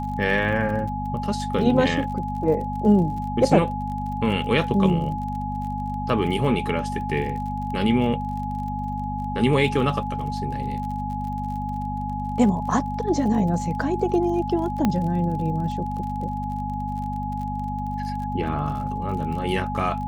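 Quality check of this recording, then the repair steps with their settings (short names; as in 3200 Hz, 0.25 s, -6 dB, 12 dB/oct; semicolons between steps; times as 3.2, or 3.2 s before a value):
crackle 39/s -33 dBFS
hum 50 Hz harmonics 5 -30 dBFS
tone 840 Hz -29 dBFS
14.85 pop -8 dBFS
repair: de-click; de-hum 50 Hz, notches 5; notch 840 Hz, Q 30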